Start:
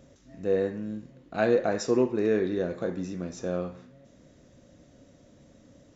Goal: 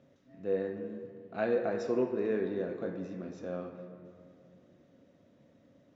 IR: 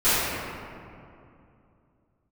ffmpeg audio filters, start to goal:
-filter_complex "[0:a]highpass=120,lowpass=3500,asplit=2[s0][s1];[1:a]atrim=start_sample=2205[s2];[s1][s2]afir=irnorm=-1:irlink=0,volume=0.0473[s3];[s0][s3]amix=inputs=2:normalize=0,volume=0.422"

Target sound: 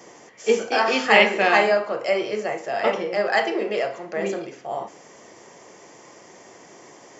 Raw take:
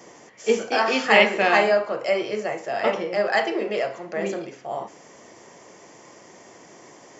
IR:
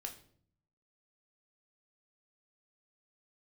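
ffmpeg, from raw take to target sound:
-filter_complex "[0:a]asplit=2[s0][s1];[s1]highpass=180[s2];[1:a]atrim=start_sample=2205[s3];[s2][s3]afir=irnorm=-1:irlink=0,volume=0.422[s4];[s0][s4]amix=inputs=2:normalize=0,volume=0.891"

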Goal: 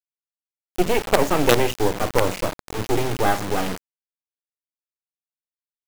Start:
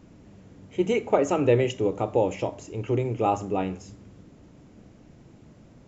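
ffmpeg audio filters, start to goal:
-filter_complex "[0:a]aeval=exprs='val(0)+0.00178*(sin(2*PI*60*n/s)+sin(2*PI*2*60*n/s)/2+sin(2*PI*3*60*n/s)/3+sin(2*PI*4*60*n/s)/4+sin(2*PI*5*60*n/s)/5)':c=same,asettb=1/sr,asplit=3[s0][s1][s2];[s0]atrim=end=0.784[s3];[s1]atrim=start=0.78:end=2.64,asetpts=PTS-STARTPTS,afade=t=in:d=0.004:c=qsin,afade=t=out:st=1.856:d=0.004:c=qsin,highpass=54[s4];[s2]atrim=start=2.636[s5];[s3][s4]acrossfade=d=0.004:c1=hsin:c2=qsin[s6];[s6][s5]acrossfade=d=0.004:c1=qsin:c2=hsin,acrossover=split=130[s7][s8];[s7]aeval=exprs='max(val(0),0)':c=same[s9];[s9][s8]amix=inputs=2:normalize=0,acrossover=split=5800[s10][s11];[s11]acompressor=threshold=0.00158:ratio=4:attack=1:release=60[s12];[s10][s12]amix=inputs=2:normalize=0,acrusher=bits=3:dc=4:mix=0:aa=0.000001,alimiter=level_in=2.82:limit=0.891:release=50:level=0:latency=1,volume=0.891"

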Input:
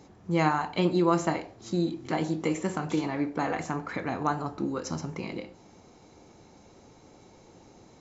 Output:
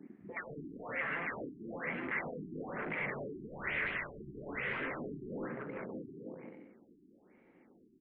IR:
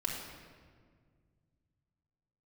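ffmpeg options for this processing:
-filter_complex "[0:a]lowshelf=f=150:t=q:w=1.5:g=-8,afwtdn=0.0112,asettb=1/sr,asplit=3[s0][s1][s2];[s0]atrim=end=3.474[s3];[s1]atrim=start=3.47:end=4.2,asetpts=PTS-STARTPTS,afade=t=in:d=0.004:c=qsin,afade=t=out:st=0.726:d=0.004:c=qsin,asplit=2[s4][s5];[s5]highpass=f=720:p=1,volume=63.1,asoftclip=type=tanh:threshold=0.168[s6];[s4][s6]amix=inputs=2:normalize=0,lowpass=f=6300:p=1,volume=0.501[s7];[s2]atrim=start=4.196[s8];[s3][s7]acrossfade=d=0.004:c1=hsin:c2=qsin[s9];[s9][s8]acrossfade=d=0.004:c1=qsin:c2=hsin,afftfilt=real='re*lt(hypot(re,im),0.0794)':imag='im*lt(hypot(re,im),0.0794)':win_size=1024:overlap=0.75,alimiter=level_in=2:limit=0.0631:level=0:latency=1:release=79,volume=0.501,aecho=1:1:530|848|1039|1153|1222:0.631|0.398|0.251|0.158|0.1,asoftclip=type=hard:threshold=0.0106,firequalizer=gain_entry='entry(140,0);entry(230,5);entry(530,2);entry(850,-3);entry(2000,14);entry(4400,-27);entry(6600,-1)':delay=0.05:min_phase=1,afftfilt=real='re*lt(b*sr/1024,390*pow(5000/390,0.5+0.5*sin(2*PI*1.1*pts/sr)))':imag='im*lt(b*sr/1024,390*pow(5000/390,0.5+0.5*sin(2*PI*1.1*pts/sr)))':win_size=1024:overlap=0.75,volume=1.12"

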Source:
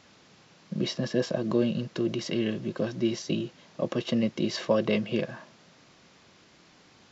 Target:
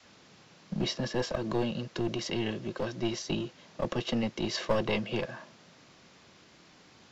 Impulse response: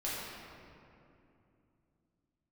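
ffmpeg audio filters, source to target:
-filter_complex "[0:a]adynamicequalizer=threshold=0.00891:dfrequency=180:dqfactor=0.94:tfrequency=180:tqfactor=0.94:attack=5:release=100:ratio=0.375:range=3.5:mode=cutabove:tftype=bell,acrossover=split=170|1300[s0][s1][s2];[s1]aeval=exprs='clip(val(0),-1,0.02)':c=same[s3];[s0][s3][s2]amix=inputs=3:normalize=0"

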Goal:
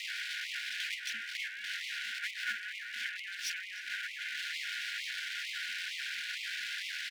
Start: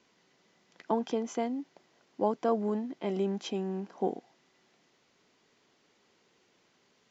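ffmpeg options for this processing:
-filter_complex "[0:a]aeval=exprs='val(0)+0.5*0.0266*sgn(val(0))':c=same,aemphasis=mode=reproduction:type=75fm,highpass=f=310:t=q:w=0.5412,highpass=f=310:t=q:w=1.307,lowpass=f=3300:t=q:w=0.5176,lowpass=f=3300:t=q:w=0.7071,lowpass=f=3300:t=q:w=1.932,afreqshift=-300,acrossover=split=220[s0][s1];[s1]acontrast=86[s2];[s0][s2]amix=inputs=2:normalize=0,aeval=exprs='abs(val(0))':c=same,afftfilt=real='re*(1-between(b*sr/4096,220,1400))':imag='im*(1-between(b*sr/4096,220,1400))':win_size=4096:overlap=0.75,asplit=2[s3][s4];[s4]adelay=306,lowpass=f=2000:p=1,volume=0.376,asplit=2[s5][s6];[s6]adelay=306,lowpass=f=2000:p=1,volume=0.26,asplit=2[s7][s8];[s8]adelay=306,lowpass=f=2000:p=1,volume=0.26[s9];[s5][s7][s9]amix=inputs=3:normalize=0[s10];[s3][s10]amix=inputs=2:normalize=0,afftfilt=real='re*gte(b*sr/1024,240*pow(2000/240,0.5+0.5*sin(2*PI*2.2*pts/sr)))':imag='im*gte(b*sr/1024,240*pow(2000/240,0.5+0.5*sin(2*PI*2.2*pts/sr)))':win_size=1024:overlap=0.75,volume=1.5"

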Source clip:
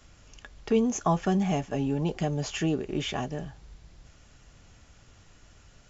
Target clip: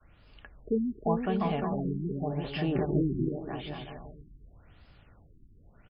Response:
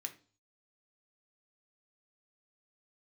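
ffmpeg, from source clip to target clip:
-filter_complex "[0:a]adynamicequalizer=threshold=0.01:dfrequency=240:dqfactor=0.85:tfrequency=240:tqfactor=0.85:attack=5:release=100:ratio=0.375:range=2:mode=cutabove:tftype=bell,asplit=2[s0][s1];[s1]aecho=0:1:350|577.5|725.4|821.5|884:0.631|0.398|0.251|0.158|0.1[s2];[s0][s2]amix=inputs=2:normalize=0,asettb=1/sr,asplit=3[s3][s4][s5];[s3]atrim=end=2.754[s6];[s4]atrim=start=2.75:end=3.29,asetpts=PTS-STARTPTS,afade=t=in:d=0.004:c=qsin,afade=t=out:st=0.536:d=0.004:c=qsin,acontrast=76[s7];[s5]atrim=start=3.286[s8];[s6][s7]acrossfade=d=0.004:c1=hsin:c2=qsin[s9];[s9][s8]acrossfade=d=0.004:c1=qsin:c2=hsin,afftfilt=real='re*lt(b*sr/1024,380*pow(5300/380,0.5+0.5*sin(2*PI*0.87*pts/sr)))':imag='im*lt(b*sr/1024,380*pow(5300/380,0.5+0.5*sin(2*PI*0.87*pts/sr)))':win_size=1024:overlap=0.75,volume=0.668"

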